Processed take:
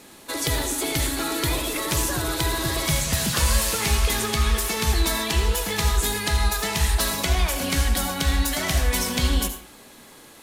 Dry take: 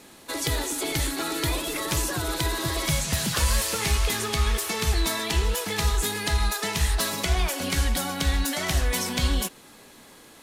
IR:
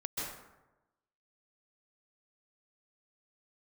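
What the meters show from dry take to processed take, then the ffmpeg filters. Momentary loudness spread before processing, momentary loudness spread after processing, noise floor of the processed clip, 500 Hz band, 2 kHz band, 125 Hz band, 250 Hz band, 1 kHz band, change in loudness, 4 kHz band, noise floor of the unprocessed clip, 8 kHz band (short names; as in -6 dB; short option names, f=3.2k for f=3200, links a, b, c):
3 LU, 3 LU, -47 dBFS, +2.0 dB, +2.5 dB, +2.5 dB, +2.5 dB, +2.5 dB, +2.5 dB, +2.5 dB, -50 dBFS, +3.0 dB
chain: -filter_complex "[0:a]asplit=2[a][b];[1:a]atrim=start_sample=2205,asetrate=83790,aresample=44100,highshelf=f=9.2k:g=11[c];[b][c]afir=irnorm=-1:irlink=0,volume=-4.5dB[d];[a][d]amix=inputs=2:normalize=0"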